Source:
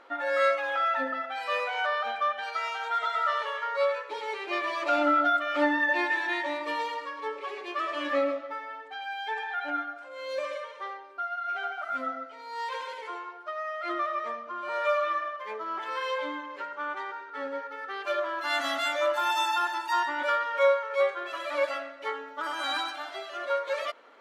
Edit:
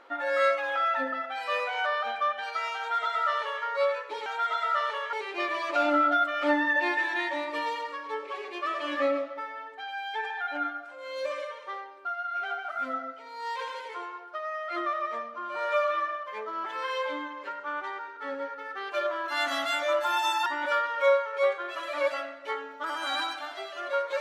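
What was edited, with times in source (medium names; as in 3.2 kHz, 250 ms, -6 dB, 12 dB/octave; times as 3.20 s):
2.78–3.65 s: copy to 4.26 s
19.59–20.03 s: delete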